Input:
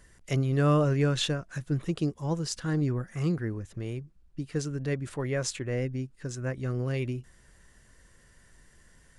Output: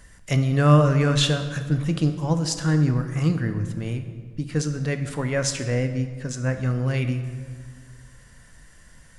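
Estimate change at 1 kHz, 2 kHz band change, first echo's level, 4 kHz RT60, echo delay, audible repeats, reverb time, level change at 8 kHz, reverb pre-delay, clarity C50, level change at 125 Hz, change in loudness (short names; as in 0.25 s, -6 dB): +7.5 dB, +7.5 dB, none, 1.1 s, none, none, 1.7 s, +7.5 dB, 12 ms, 9.0 dB, +8.0 dB, +7.0 dB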